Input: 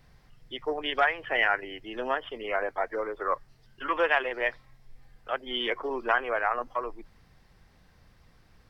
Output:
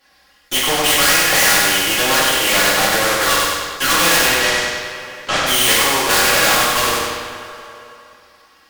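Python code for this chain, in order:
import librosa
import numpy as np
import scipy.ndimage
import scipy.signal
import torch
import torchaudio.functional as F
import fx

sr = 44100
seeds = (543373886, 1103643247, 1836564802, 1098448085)

p1 = fx.spec_quant(x, sr, step_db=15)
p2 = fx.highpass(p1, sr, hz=1400.0, slope=6)
p3 = p2 + 0.62 * np.pad(p2, (int(3.6 * sr / 1000.0), 0))[:len(p2)]
p4 = fx.leveller(p3, sr, passes=5)
p5 = fx.clip_asym(p4, sr, top_db=-20.5, bottom_db=-17.5)
p6 = fx.air_absorb(p5, sr, metres=120.0, at=(4.15, 5.37))
p7 = p6 + fx.echo_feedback(p6, sr, ms=97, feedback_pct=39, wet_db=-4.5, dry=0)
p8 = fx.rev_double_slope(p7, sr, seeds[0], early_s=0.55, late_s=2.6, knee_db=-25, drr_db=-7.5)
p9 = fx.spectral_comp(p8, sr, ratio=2.0)
y = p9 * 10.0 ** (-2.0 / 20.0)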